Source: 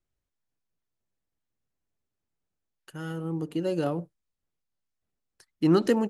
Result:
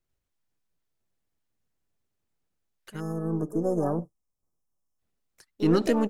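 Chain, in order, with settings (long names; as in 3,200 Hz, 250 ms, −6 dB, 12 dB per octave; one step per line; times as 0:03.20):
gain on one half-wave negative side −3 dB
in parallel at +1 dB: brickwall limiter −20.5 dBFS, peak gain reduction 10 dB
on the sum: time-frequency box erased 0:03.00–0:04.99, 1,300–5,100 Hz
pitch-shifted copies added +5 semitones −10 dB
level −3.5 dB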